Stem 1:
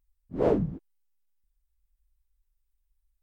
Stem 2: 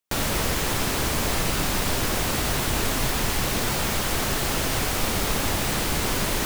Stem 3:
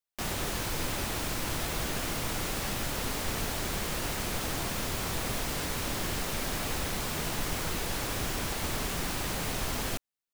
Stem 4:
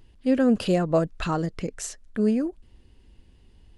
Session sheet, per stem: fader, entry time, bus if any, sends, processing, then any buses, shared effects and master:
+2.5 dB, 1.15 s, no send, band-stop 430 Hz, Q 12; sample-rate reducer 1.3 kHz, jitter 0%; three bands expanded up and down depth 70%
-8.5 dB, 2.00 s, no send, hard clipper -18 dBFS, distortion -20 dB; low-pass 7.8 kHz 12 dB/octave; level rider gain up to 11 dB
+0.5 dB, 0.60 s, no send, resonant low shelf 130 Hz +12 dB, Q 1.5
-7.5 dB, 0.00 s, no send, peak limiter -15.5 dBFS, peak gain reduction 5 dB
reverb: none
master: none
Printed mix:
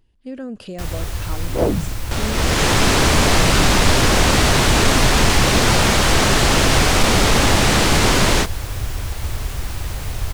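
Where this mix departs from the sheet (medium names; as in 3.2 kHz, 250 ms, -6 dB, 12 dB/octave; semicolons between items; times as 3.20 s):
stem 1: missing sample-rate reducer 1.3 kHz, jitter 0%; stem 2 -8.5 dB -> 0.0 dB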